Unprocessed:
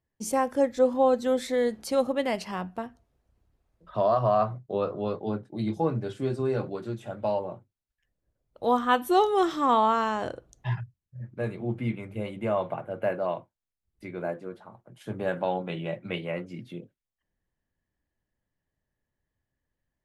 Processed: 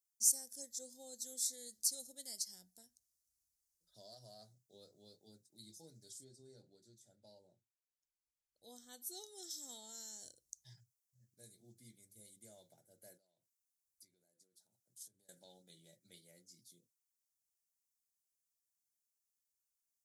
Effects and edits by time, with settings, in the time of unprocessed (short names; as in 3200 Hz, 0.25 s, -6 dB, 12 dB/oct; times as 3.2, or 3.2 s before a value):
6.23–9.49 LPF 1400 Hz -> 3400 Hz 6 dB/oct
13.17–15.29 compressor 8:1, threshold -44 dBFS
whole clip: inverse Chebyshev high-pass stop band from 2900 Hz, stop band 40 dB; gain +7.5 dB